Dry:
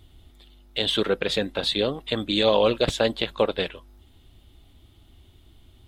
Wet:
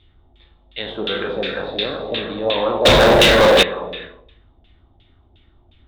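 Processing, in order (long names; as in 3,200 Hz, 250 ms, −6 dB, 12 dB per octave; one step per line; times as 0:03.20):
peak hold with a decay on every bin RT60 0.65 s
reverb whose tail is shaped and stops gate 450 ms flat, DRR 0 dB
auto-filter low-pass saw down 2.8 Hz 670–2,900 Hz
0:02.85–0:03.63: leveller curve on the samples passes 5
parametric band 3,700 Hz +11 dB 0.22 octaves
level −5 dB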